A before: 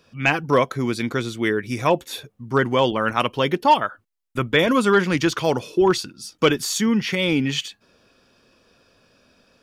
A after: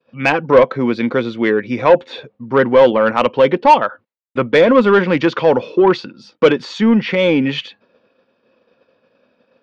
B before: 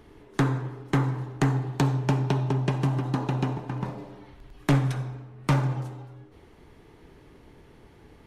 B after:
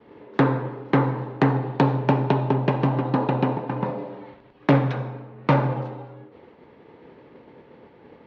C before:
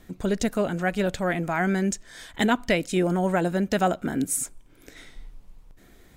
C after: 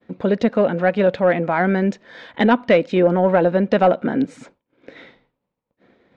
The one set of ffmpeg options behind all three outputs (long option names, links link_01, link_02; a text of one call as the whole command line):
ffmpeg -i in.wav -af "highpass=150,equalizer=frequency=230:width_type=q:width=4:gain=4,equalizer=frequency=520:width_type=q:width=4:gain=10,equalizer=frequency=910:width_type=q:width=4:gain=4,equalizer=frequency=3200:width_type=q:width=4:gain=-3,lowpass=frequency=3700:width=0.5412,lowpass=frequency=3700:width=1.3066,agate=range=-33dB:threshold=-48dB:ratio=3:detection=peak,acontrast=54,volume=-1dB" out.wav